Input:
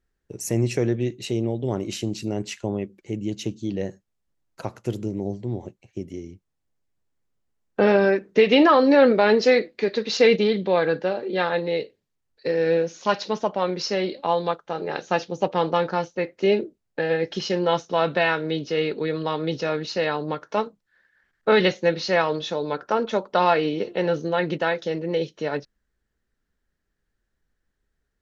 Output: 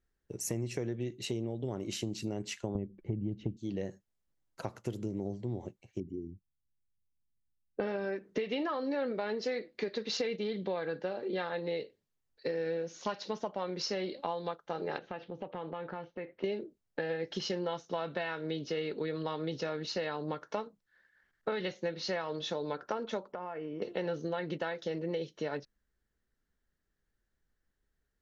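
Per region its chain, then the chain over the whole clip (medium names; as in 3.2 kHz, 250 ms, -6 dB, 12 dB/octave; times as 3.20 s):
2.75–3.57 s: low-pass 3.5 kHz + tilt EQ -4 dB/octave
6.00–7.80 s: resonances exaggerated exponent 2 + high-order bell 1.1 kHz -11 dB 2.3 oct
14.98–16.44 s: low-pass 3.2 kHz 24 dB/octave + compression 4:1, threshold -33 dBFS
23.32–23.82 s: boxcar filter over 11 samples + compression 16:1, threshold -30 dBFS
whole clip: band-stop 2.5 kHz, Q 25; compression 10:1, threshold -26 dBFS; trim -5 dB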